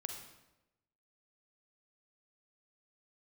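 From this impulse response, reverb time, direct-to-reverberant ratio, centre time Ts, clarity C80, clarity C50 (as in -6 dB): 0.95 s, 3.5 dB, 32 ms, 7.0 dB, 5.0 dB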